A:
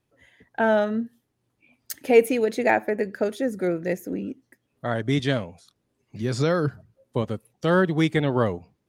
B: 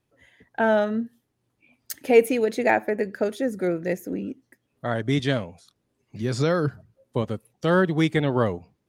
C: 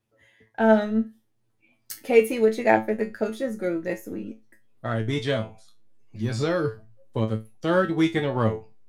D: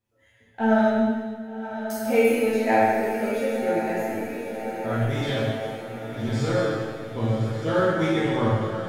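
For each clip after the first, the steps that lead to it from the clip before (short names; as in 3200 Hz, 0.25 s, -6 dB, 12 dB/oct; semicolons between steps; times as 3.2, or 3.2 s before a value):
nothing audible
in parallel at -12 dB: backlash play -19 dBFS; on the sum: resonator 110 Hz, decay 0.23 s, harmonics all, mix 90%; gain +5.5 dB
on a send: diffused feedback echo 1.121 s, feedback 58%, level -8.5 dB; on the sum: plate-style reverb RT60 1.6 s, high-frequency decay 1×, DRR -7.5 dB; gain -7 dB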